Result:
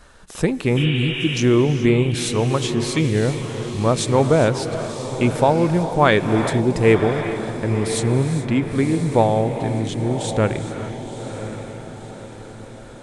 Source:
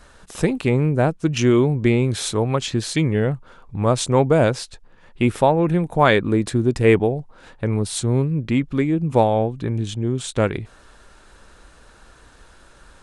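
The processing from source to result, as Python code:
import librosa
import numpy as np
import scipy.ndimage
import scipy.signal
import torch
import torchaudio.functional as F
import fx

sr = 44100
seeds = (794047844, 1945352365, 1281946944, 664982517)

y = fx.spec_repair(x, sr, seeds[0], start_s=0.79, length_s=0.56, low_hz=350.0, high_hz=3800.0, source='after')
y = fx.echo_diffused(y, sr, ms=1034, feedback_pct=48, wet_db=-10.0)
y = fx.rev_gated(y, sr, seeds[1], gate_ms=450, shape='rising', drr_db=9.5)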